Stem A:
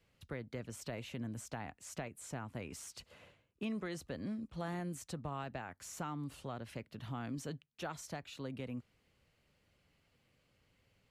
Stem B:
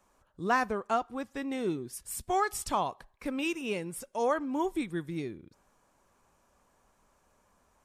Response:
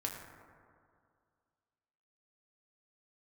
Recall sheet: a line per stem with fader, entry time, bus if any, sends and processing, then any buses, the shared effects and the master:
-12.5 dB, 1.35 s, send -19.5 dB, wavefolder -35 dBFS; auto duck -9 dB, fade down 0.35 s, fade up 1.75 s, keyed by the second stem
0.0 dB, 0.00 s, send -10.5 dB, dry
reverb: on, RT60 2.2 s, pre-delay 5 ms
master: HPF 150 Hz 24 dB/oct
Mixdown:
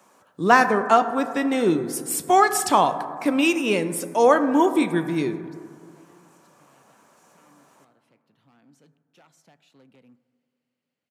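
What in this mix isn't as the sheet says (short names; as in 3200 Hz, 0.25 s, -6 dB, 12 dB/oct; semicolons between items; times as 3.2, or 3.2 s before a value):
stem B 0.0 dB -> +8.0 dB; reverb return +7.0 dB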